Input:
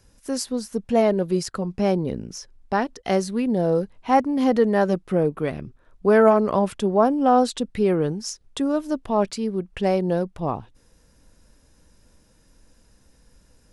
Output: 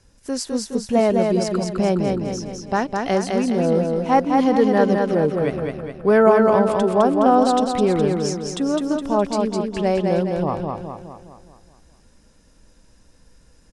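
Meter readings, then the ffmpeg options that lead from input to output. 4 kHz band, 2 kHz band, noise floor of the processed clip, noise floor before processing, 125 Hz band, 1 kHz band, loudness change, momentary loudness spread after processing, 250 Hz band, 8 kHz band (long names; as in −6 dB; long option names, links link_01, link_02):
+3.0 dB, +3.0 dB, −54 dBFS, −59 dBFS, +3.0 dB, +3.0 dB, +3.0 dB, 10 LU, +3.0 dB, +2.5 dB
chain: -af "lowpass=frequency=9900:width=0.5412,lowpass=frequency=9900:width=1.3066,aecho=1:1:208|416|624|832|1040|1248|1456:0.668|0.341|0.174|0.0887|0.0452|0.0231|0.0118,volume=1dB"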